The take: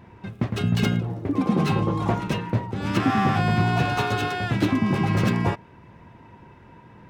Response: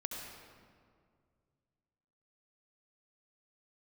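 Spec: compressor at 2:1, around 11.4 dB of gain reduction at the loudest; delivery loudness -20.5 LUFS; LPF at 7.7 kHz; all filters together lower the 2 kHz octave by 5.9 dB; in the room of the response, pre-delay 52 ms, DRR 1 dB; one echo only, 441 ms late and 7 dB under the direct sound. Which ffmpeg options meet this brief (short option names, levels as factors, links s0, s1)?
-filter_complex "[0:a]lowpass=7700,equalizer=f=2000:t=o:g=-8.5,acompressor=threshold=0.0112:ratio=2,aecho=1:1:441:0.447,asplit=2[s0][s1];[1:a]atrim=start_sample=2205,adelay=52[s2];[s1][s2]afir=irnorm=-1:irlink=0,volume=0.841[s3];[s0][s3]amix=inputs=2:normalize=0,volume=3.76"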